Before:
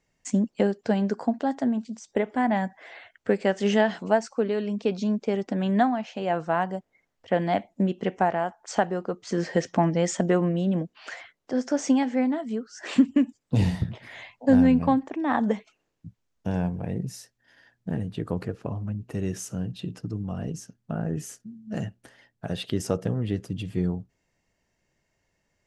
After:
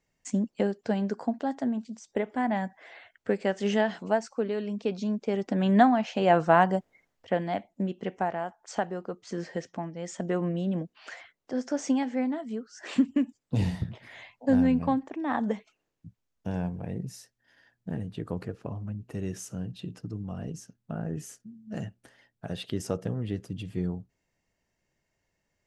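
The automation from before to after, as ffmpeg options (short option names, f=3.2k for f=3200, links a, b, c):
-af "volume=16.5dB,afade=t=in:st=5.21:d=1.06:silence=0.354813,afade=t=out:st=6.77:d=0.67:silence=0.281838,afade=t=out:st=9.19:d=0.75:silence=0.316228,afade=t=in:st=9.94:d=0.56:silence=0.266073"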